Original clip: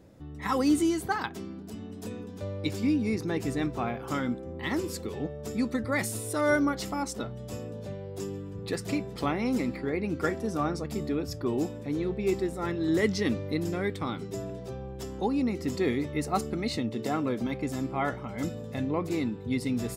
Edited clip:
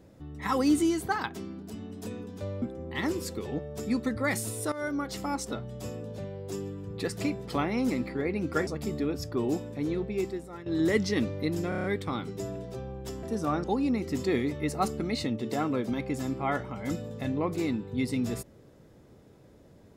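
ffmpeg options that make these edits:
ffmpeg -i in.wav -filter_complex "[0:a]asplit=12[link_01][link_02][link_03][link_04][link_05][link_06][link_07][link_08][link_09][link_10][link_11][link_12];[link_01]atrim=end=2.622[link_13];[link_02]atrim=start=4.298:end=6.4,asetpts=PTS-STARTPTS,afade=type=out:start_time=2.098:duration=0.004:curve=hsin:silence=0.16788[link_14];[link_03]atrim=start=6.4:end=10.352,asetpts=PTS-STARTPTS,afade=type=in:duration=0.57:silence=0.16788[link_15];[link_04]atrim=start=10.758:end=12.75,asetpts=PTS-STARTPTS,afade=type=out:start_time=1.252:duration=0.74:silence=0.16788[link_16];[link_05]atrim=start=12.75:end=13.812,asetpts=PTS-STARTPTS,afade=type=in:duration=0.004:curve=hsin:silence=0.16788[link_17];[link_06]atrim=start=13.778:end=13.812[link_18];[link_07]atrim=start=13.778:end=13.812[link_19];[link_08]atrim=start=13.778:end=13.812[link_20];[link_09]atrim=start=13.778:end=13.812[link_21];[link_10]atrim=start=13.778:end=15.172[link_22];[link_11]atrim=start=10.348:end=10.762[link_23];[link_12]atrim=start=15.168[link_24];[link_14][link_15]concat=n=2:v=0:a=1[link_25];[link_13][link_25]acrossfade=duration=0.004:curve1=hsin:curve2=hsin[link_26];[link_16][link_17]concat=n=2:v=0:a=1[link_27];[link_26][link_27]acrossfade=duration=0.004:curve1=hsin:curve2=hsin[link_28];[link_28][link_18]acrossfade=duration=0.004:curve1=hsin:curve2=hsin[link_29];[link_29][link_19]acrossfade=duration=0.004:curve1=hsin:curve2=hsin[link_30];[link_30][link_20]acrossfade=duration=0.004:curve1=hsin:curve2=hsin[link_31];[link_31][link_21]acrossfade=duration=0.004:curve1=hsin:curve2=hsin[link_32];[link_32][link_22]acrossfade=duration=0.004:curve1=hsin:curve2=hsin[link_33];[link_33][link_23]acrossfade=duration=0.004:curve1=hsin:curve2=hsin[link_34];[link_34][link_24]acrossfade=duration=0.004:curve1=hsin:curve2=hsin" out.wav

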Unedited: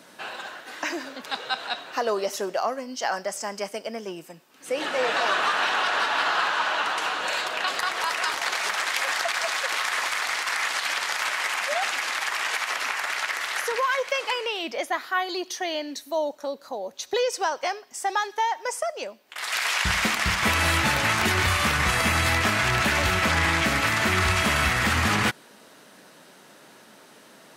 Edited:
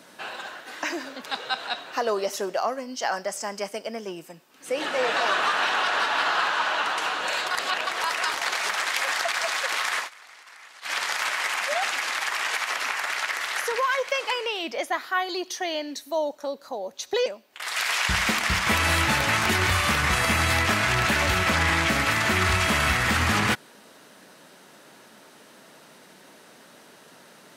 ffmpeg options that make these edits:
ffmpeg -i in.wav -filter_complex "[0:a]asplit=6[link_01][link_02][link_03][link_04][link_05][link_06];[link_01]atrim=end=7.512[link_07];[link_02]atrim=start=7.508:end=7.872,asetpts=PTS-STARTPTS,areverse[link_08];[link_03]atrim=start=7.868:end=10.1,asetpts=PTS-STARTPTS,afade=type=out:start_time=2.102:duration=0.13:silence=0.0891251[link_09];[link_04]atrim=start=10.1:end=10.81,asetpts=PTS-STARTPTS,volume=-21dB[link_10];[link_05]atrim=start=10.81:end=17.262,asetpts=PTS-STARTPTS,afade=type=in:duration=0.13:silence=0.0891251[link_11];[link_06]atrim=start=19.018[link_12];[link_07][link_08]acrossfade=duration=0.004:curve1=hsin:curve2=hsin[link_13];[link_09][link_10][link_11]concat=n=3:v=0:a=1[link_14];[link_13][link_14]acrossfade=duration=0.004:curve1=hsin:curve2=hsin[link_15];[link_15][link_12]acrossfade=duration=0.004:curve1=hsin:curve2=hsin" out.wav

